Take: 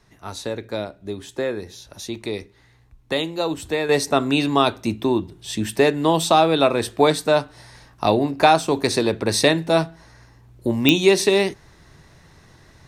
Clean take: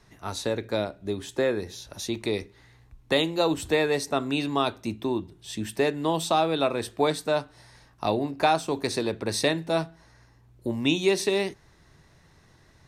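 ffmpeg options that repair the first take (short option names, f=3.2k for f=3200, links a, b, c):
-af "adeclick=t=4,asetnsamples=n=441:p=0,asendcmd='3.89 volume volume -7.5dB',volume=0dB"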